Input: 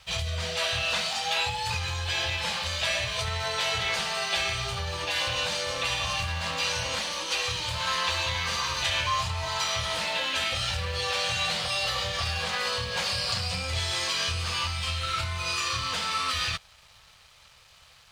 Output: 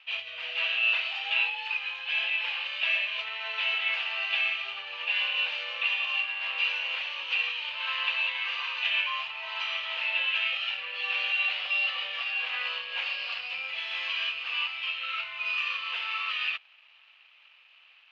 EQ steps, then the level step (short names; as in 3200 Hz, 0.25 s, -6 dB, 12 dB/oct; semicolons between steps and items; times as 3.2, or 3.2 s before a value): HPF 730 Hz 12 dB/oct; ladder low-pass 2900 Hz, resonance 75%; +3.5 dB